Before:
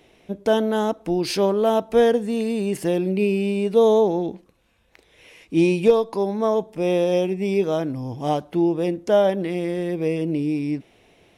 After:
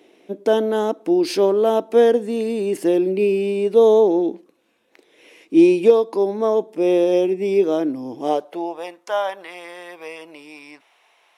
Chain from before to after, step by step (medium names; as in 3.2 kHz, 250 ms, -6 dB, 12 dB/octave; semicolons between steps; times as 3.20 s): high-pass sweep 310 Hz -> 1 kHz, 8.17–8.94 s; trim -1 dB